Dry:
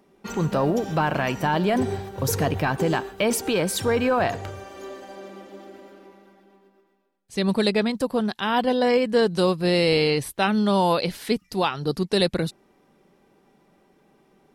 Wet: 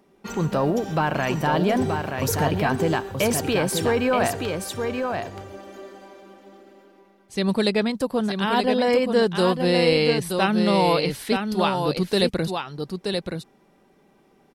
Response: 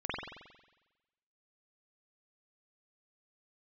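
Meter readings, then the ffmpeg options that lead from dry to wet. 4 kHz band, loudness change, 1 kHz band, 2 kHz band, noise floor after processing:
+1.0 dB, +0.5 dB, +1.0 dB, +1.0 dB, -59 dBFS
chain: -af "aecho=1:1:927:0.531"

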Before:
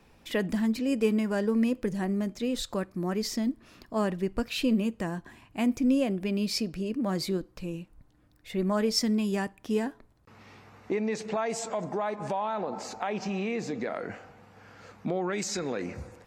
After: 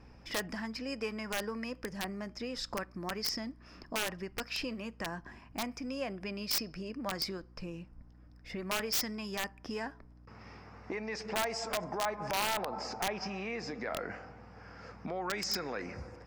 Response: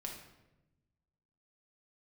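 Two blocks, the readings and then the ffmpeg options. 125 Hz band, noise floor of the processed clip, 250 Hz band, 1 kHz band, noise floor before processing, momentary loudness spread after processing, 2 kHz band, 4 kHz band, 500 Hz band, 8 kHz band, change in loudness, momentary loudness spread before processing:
-10.5 dB, -56 dBFS, -13.0 dB, -3.0 dB, -61 dBFS, 15 LU, 0.0 dB, -0.5 dB, -8.5 dB, -2.0 dB, -7.0 dB, 10 LU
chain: -filter_complex "[0:a]aemphasis=mode=production:type=75kf,acrossover=split=700|2400[a][b][c];[a]acompressor=threshold=-39dB:ratio=16[d];[c]bandpass=f=5.1k:t=q:w=14:csg=0[e];[d][b][e]amix=inputs=3:normalize=0,aeval=exprs='val(0)+0.00158*(sin(2*PI*60*n/s)+sin(2*PI*2*60*n/s)/2+sin(2*PI*3*60*n/s)/3+sin(2*PI*4*60*n/s)/4+sin(2*PI*5*60*n/s)/5)':c=same,aeval=exprs='(mod(17.8*val(0)+1,2)-1)/17.8':c=same"

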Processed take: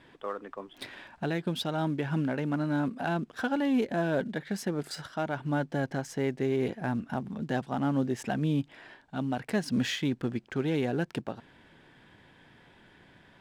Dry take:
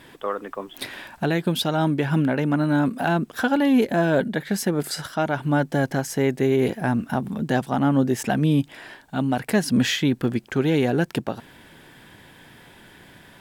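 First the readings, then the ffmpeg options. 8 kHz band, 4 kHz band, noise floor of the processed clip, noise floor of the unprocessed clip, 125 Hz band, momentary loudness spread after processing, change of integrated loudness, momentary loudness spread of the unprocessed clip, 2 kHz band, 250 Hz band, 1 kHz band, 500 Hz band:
-11.5 dB, -9.0 dB, -59 dBFS, -50 dBFS, -8.5 dB, 10 LU, -8.5 dB, 10 LU, -8.5 dB, -8.5 dB, -8.5 dB, -8.5 dB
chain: -af "acrusher=bits=8:mode=log:mix=0:aa=0.000001,adynamicsmooth=sensitivity=6:basefreq=5.2k,volume=-8.5dB"

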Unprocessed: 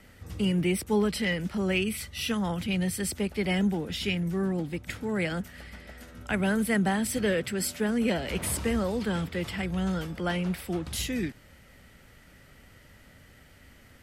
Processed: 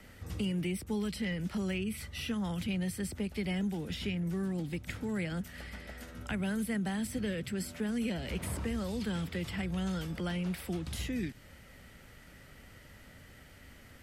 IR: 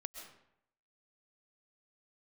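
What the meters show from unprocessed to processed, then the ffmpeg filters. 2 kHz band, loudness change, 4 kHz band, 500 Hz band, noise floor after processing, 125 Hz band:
-8.5 dB, -7.0 dB, -7.5 dB, -9.5 dB, -55 dBFS, -4.5 dB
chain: -filter_complex "[0:a]acrossover=split=250|2200[a][b][c];[a]acompressor=threshold=-34dB:ratio=4[d];[b]acompressor=threshold=-42dB:ratio=4[e];[c]acompressor=threshold=-45dB:ratio=4[f];[d][e][f]amix=inputs=3:normalize=0"

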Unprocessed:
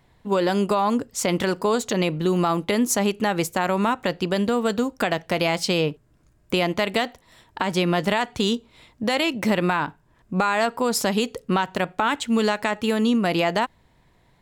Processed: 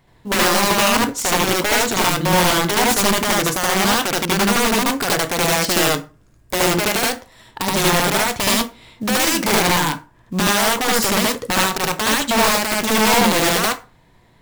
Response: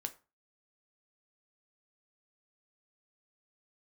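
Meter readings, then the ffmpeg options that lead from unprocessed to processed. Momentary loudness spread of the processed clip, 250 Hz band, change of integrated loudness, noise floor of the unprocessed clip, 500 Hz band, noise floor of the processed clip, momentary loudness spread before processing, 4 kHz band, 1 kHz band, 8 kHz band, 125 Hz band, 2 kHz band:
6 LU, +2.0 dB, +6.5 dB, -60 dBFS, +2.5 dB, -53 dBFS, 4 LU, +10.0 dB, +6.0 dB, +13.0 dB, +3.5 dB, +8.5 dB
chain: -filter_complex "[0:a]acrusher=bits=7:mode=log:mix=0:aa=0.000001,aeval=exprs='(mod(6.31*val(0)+1,2)-1)/6.31':c=same,asplit=2[a][b];[1:a]atrim=start_sample=2205,adelay=74[c];[b][c]afir=irnorm=-1:irlink=0,volume=3.5dB[d];[a][d]amix=inputs=2:normalize=0,volume=2dB"

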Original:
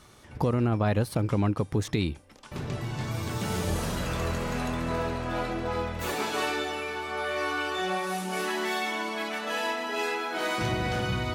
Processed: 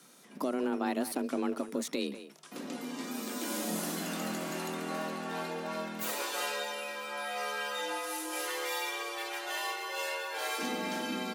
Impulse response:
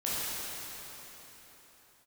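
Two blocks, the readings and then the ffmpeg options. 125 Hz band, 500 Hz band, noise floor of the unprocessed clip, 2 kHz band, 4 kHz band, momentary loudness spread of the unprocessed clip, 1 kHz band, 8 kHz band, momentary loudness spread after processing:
-20.5 dB, -6.0 dB, -50 dBFS, -5.5 dB, -3.0 dB, 6 LU, -5.5 dB, +1.5 dB, 5 LU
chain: -filter_complex "[0:a]afreqshift=130,asplit=2[a][b];[b]adelay=190,highpass=300,lowpass=3.4k,asoftclip=type=hard:threshold=-21dB,volume=-11dB[c];[a][c]amix=inputs=2:normalize=0,crystalizer=i=2:c=0,volume=-7.5dB"

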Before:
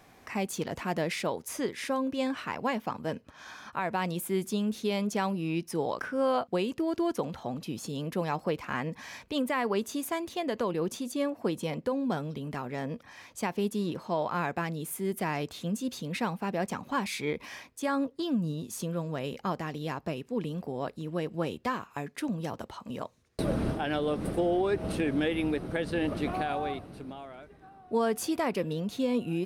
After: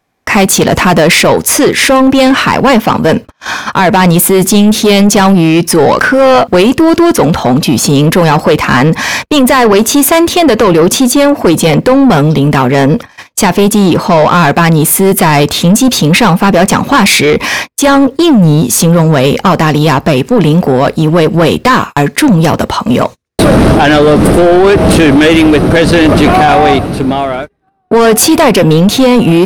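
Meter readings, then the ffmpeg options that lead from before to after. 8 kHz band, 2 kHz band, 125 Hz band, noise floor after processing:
+30.0 dB, +26.0 dB, +27.0 dB, -40 dBFS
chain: -af "apsyclip=29dB,agate=range=-39dB:threshold=-17dB:ratio=16:detection=peak,acontrast=33,volume=-2dB"

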